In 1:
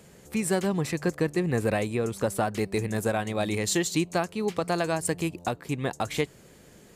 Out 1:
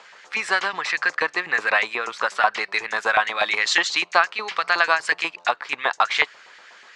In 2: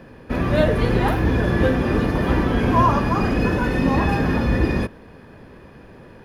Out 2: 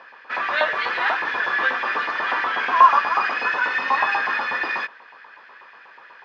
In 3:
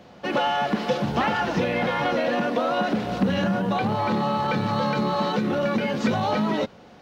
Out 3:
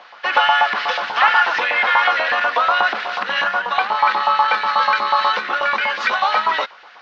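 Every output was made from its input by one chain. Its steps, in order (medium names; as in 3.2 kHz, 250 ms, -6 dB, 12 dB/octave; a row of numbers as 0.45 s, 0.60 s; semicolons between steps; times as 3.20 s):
LFO high-pass saw up 8.2 Hz 910–1900 Hz; low-pass 5.2 kHz 24 dB/octave; peak normalisation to -2 dBFS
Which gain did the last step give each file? +10.5 dB, +2.5 dB, +8.5 dB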